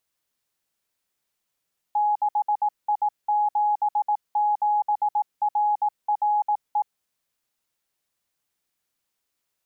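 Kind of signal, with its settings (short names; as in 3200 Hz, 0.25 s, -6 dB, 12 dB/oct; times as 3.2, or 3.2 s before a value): Morse "6I77RRE" 18 wpm 836 Hz -18.5 dBFS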